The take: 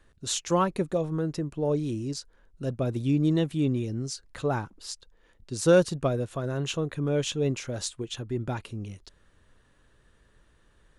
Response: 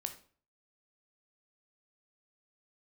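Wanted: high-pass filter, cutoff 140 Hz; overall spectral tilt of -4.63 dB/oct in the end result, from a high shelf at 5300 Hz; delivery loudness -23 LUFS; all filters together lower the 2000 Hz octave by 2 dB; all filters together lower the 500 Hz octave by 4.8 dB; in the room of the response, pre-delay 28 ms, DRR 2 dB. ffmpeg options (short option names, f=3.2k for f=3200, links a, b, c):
-filter_complex "[0:a]highpass=140,equalizer=f=500:t=o:g=-5.5,equalizer=f=2k:t=o:g=-3.5,highshelf=f=5.3k:g=6,asplit=2[a][b];[1:a]atrim=start_sample=2205,adelay=28[c];[b][c]afir=irnorm=-1:irlink=0,volume=-1dB[d];[a][d]amix=inputs=2:normalize=0,volume=6dB"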